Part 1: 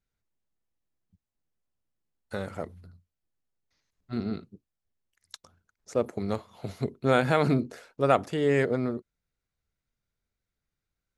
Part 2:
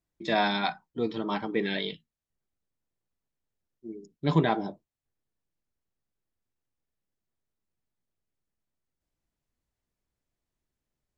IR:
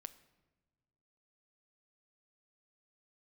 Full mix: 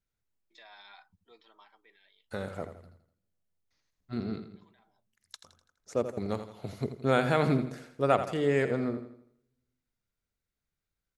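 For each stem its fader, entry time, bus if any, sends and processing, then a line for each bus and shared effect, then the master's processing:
-4.0 dB, 0.00 s, send -11 dB, echo send -9 dB, dry
-16.0 dB, 0.30 s, no send, no echo send, HPF 920 Hz 12 dB/oct; limiter -26.5 dBFS, peak gain reduction 11 dB; auto duck -14 dB, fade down 1.00 s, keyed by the first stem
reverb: on, pre-delay 7 ms
echo: feedback echo 83 ms, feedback 43%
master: dry

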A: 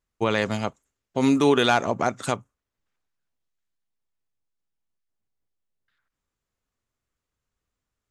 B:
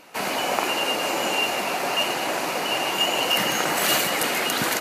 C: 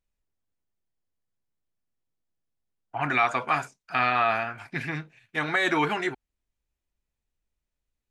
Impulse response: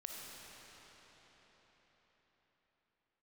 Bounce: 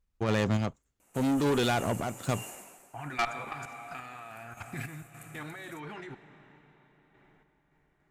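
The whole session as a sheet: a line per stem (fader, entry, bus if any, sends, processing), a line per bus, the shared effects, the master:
-1.0 dB, 0.00 s, no send, median filter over 3 samples
-19.0 dB, 1.00 s, no send, resonant high shelf 6000 Hz +10 dB, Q 3; auto duck -18 dB, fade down 0.45 s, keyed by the third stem
0.0 dB, 0.00 s, send -3.5 dB, level quantiser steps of 21 dB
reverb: on, RT60 5.1 s, pre-delay 15 ms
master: low shelf 180 Hz +11.5 dB; tube stage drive 21 dB, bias 0.35; random-step tremolo

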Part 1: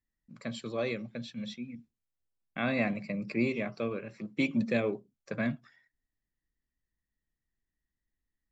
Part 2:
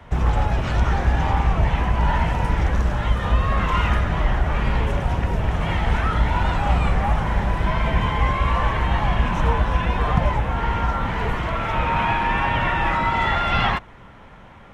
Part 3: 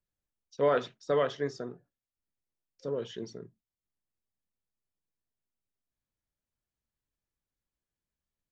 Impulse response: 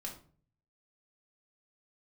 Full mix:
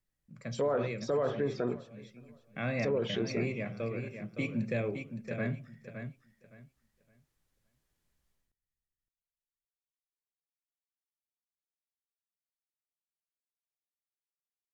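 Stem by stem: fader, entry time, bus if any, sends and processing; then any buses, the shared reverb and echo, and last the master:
-2.5 dB, 0.00 s, no bus, send -7 dB, echo send -6.5 dB, graphic EQ 125/250/1000/4000 Hz +7/-7/-6/-9 dB
off
+0.5 dB, 0.00 s, bus A, no send, echo send -23 dB, treble ducked by the level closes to 1100 Hz, closed at -27.5 dBFS
bus A: 0.0 dB, AGC gain up to 10 dB; limiter -13.5 dBFS, peak gain reduction 6.5 dB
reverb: on, RT60 0.45 s, pre-delay 4 ms
echo: feedback echo 0.565 s, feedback 22%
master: limiter -22.5 dBFS, peak gain reduction 9.5 dB

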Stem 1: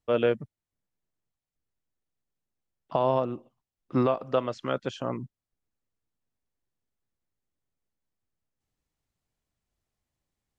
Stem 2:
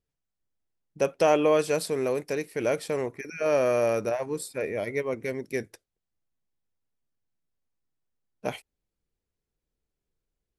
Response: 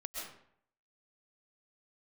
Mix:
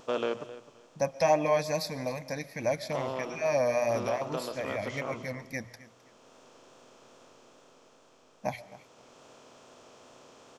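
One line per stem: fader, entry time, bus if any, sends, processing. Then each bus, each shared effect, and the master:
-8.0 dB, 0.00 s, send -19 dB, echo send -17 dB, per-bin compression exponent 0.4; tone controls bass -9 dB, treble +11 dB; auto duck -7 dB, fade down 1.20 s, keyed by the second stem
+1.5 dB, 0.00 s, send -16 dB, echo send -17.5 dB, LFO notch sine 3.1 Hz 280–3300 Hz; fixed phaser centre 2000 Hz, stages 8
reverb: on, RT60 0.65 s, pre-delay 90 ms
echo: feedback echo 0.262 s, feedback 24%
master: notches 60/120 Hz; vibrato 2.4 Hz 33 cents

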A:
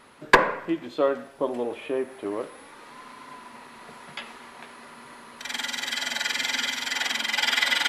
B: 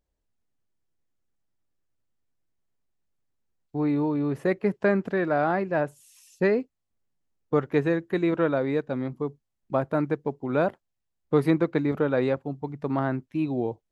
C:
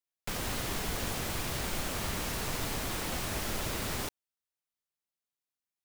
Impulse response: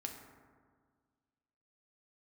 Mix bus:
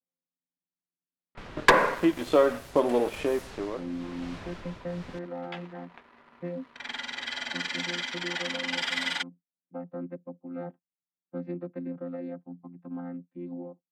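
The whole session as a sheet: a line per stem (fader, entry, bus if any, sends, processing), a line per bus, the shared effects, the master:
+3.0 dB, 1.35 s, no send, sample leveller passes 2; auto duck -14 dB, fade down 0.75 s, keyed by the second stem
-11.5 dB, 0.00 s, no send, chord vocoder bare fifth, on F3
-5.5 dB, 1.10 s, no send, tremolo triangle 1 Hz, depth 65%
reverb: off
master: low-pass opened by the level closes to 2300 Hz, open at -19 dBFS; compressor 1.5:1, threshold -31 dBFS, peak gain reduction 9.5 dB

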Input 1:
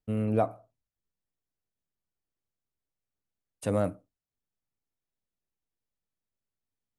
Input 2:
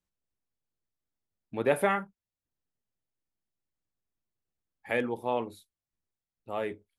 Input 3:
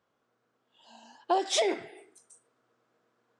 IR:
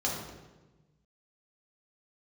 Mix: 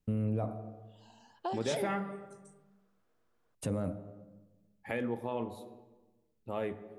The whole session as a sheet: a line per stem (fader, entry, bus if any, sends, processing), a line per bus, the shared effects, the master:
-1.0 dB, 0.00 s, bus A, send -22 dB, dry
-3.0 dB, 0.00 s, bus A, send -16.5 dB, dry
-7.0 dB, 0.15 s, no bus, no send, dry
bus A: 0.0 dB, low shelf 380 Hz +10 dB; limiter -20 dBFS, peak gain reduction 10.5 dB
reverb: on, RT60 1.2 s, pre-delay 3 ms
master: compressor 1.5:1, threshold -38 dBFS, peak gain reduction 5.5 dB

